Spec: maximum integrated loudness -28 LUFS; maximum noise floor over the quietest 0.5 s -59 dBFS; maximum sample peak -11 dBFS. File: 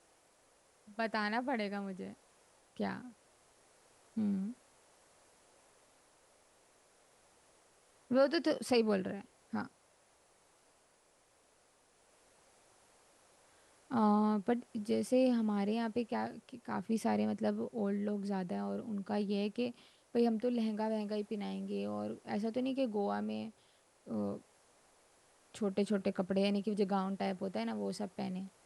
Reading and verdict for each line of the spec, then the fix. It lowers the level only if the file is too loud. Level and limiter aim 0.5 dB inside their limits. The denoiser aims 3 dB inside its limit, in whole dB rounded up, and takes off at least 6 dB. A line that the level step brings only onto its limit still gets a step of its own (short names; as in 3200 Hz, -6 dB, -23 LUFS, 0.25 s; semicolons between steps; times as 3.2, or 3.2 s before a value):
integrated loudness -36.0 LUFS: OK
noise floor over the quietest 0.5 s -70 dBFS: OK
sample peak -19.0 dBFS: OK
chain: none